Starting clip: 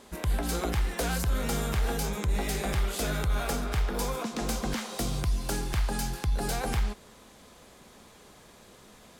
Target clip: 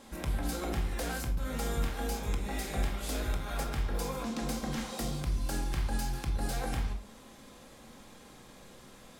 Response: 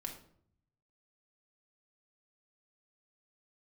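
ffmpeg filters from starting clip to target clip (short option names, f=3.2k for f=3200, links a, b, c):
-filter_complex "[0:a]acompressor=threshold=-39dB:ratio=1.5,asettb=1/sr,asplit=3[a][b][c];[a]atrim=end=1.274[d];[b]atrim=start=1.27:end=3.64,asetpts=PTS-STARTPTS,afade=t=in:d=0.004:c=qsin,afade=t=out:st=2.366:d=0.004:c=qsin,acrossover=split=150[e][f];[f]adelay=100[g];[e][g]amix=inputs=2:normalize=0,atrim=end_sample=104517[h];[c]atrim=start=3.636[i];[d][h]acrossfade=d=0.004:c1=hsin:c2=qsin[j];[j][i]acrossfade=d=0.004:c1=qsin:c2=hsin[k];[1:a]atrim=start_sample=2205,afade=t=out:st=0.24:d=0.01,atrim=end_sample=11025[l];[k][l]afir=irnorm=-1:irlink=0,volume=1.5dB"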